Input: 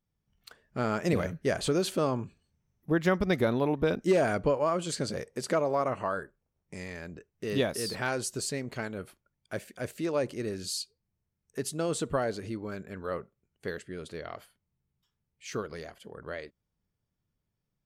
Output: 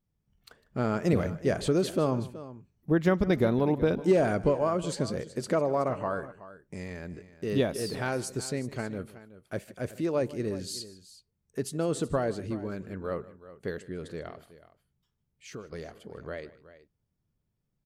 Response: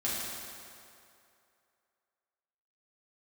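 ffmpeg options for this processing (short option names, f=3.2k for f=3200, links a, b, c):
-filter_complex "[0:a]tiltshelf=f=720:g=3.5,asettb=1/sr,asplit=3[a][b][c];[a]atrim=end=14.294[d];[b]atrim=start=14.29:end=15.72,asetpts=PTS-STARTPTS,afade=t=in:d=0.004:c=qsin,afade=t=out:st=1.426:d=0.004:c=qsin,acompressor=threshold=-46dB:ratio=2[e];[c]atrim=start=15.716[f];[d][e]acrossfade=d=0.004:c1=hsin:c2=qsin[g];[g][f]acrossfade=d=0.004:c1=qsin:c2=hsin,aecho=1:1:153|373:0.106|0.158"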